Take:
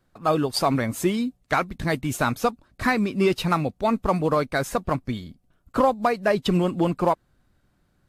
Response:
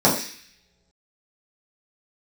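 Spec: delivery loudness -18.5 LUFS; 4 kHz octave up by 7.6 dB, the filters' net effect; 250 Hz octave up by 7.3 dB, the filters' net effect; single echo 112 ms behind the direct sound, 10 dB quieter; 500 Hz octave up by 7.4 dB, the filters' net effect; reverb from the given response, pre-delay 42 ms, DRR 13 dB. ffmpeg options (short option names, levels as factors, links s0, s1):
-filter_complex "[0:a]equalizer=f=250:t=o:g=7.5,equalizer=f=500:t=o:g=7,equalizer=f=4000:t=o:g=9,aecho=1:1:112:0.316,asplit=2[s0][s1];[1:a]atrim=start_sample=2205,adelay=42[s2];[s1][s2]afir=irnorm=-1:irlink=0,volume=0.0211[s3];[s0][s3]amix=inputs=2:normalize=0,volume=0.841"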